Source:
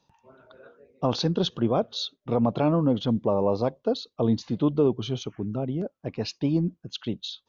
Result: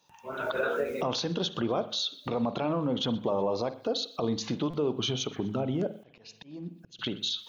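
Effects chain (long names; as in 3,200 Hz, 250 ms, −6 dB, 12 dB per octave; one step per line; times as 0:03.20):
camcorder AGC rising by 56 dB per second
spectral tilt +2.5 dB per octave
hum removal 53.33 Hz, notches 5
brickwall limiter −19.5 dBFS, peak gain reduction 10 dB
on a send at −12.5 dB: convolution reverb, pre-delay 46 ms
0:05.95–0:06.99: on the sum: volume swells 627 ms
parametric band 4,700 Hz −4.5 dB 0.61 octaves
feedback echo with a band-pass in the loop 124 ms, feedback 62%, band-pass 2,900 Hz, level −20 dB
buffer that repeats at 0:04.70, samples 256, times 5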